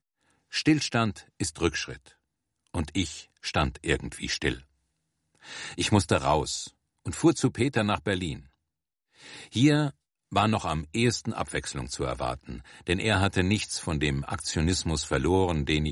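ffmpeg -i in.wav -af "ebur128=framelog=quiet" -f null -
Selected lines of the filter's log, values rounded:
Integrated loudness:
  I:         -27.5 LUFS
  Threshold: -38.2 LUFS
Loudness range:
  LRA:         4.3 LU
  Threshold: -48.7 LUFS
  LRA low:   -31.4 LUFS
  LRA high:  -27.1 LUFS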